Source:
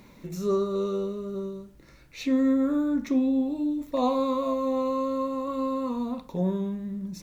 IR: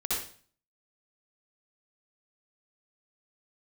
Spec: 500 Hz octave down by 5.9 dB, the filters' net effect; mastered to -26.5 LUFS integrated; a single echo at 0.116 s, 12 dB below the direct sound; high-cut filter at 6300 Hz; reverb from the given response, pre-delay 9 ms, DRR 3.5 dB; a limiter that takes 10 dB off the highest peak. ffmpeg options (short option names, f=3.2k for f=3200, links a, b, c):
-filter_complex "[0:a]lowpass=6.3k,equalizer=f=500:t=o:g=-7,alimiter=level_in=3dB:limit=-24dB:level=0:latency=1,volume=-3dB,aecho=1:1:116:0.251,asplit=2[a][b];[1:a]atrim=start_sample=2205,adelay=9[c];[b][c]afir=irnorm=-1:irlink=0,volume=-10.5dB[d];[a][d]amix=inputs=2:normalize=0,volume=5dB"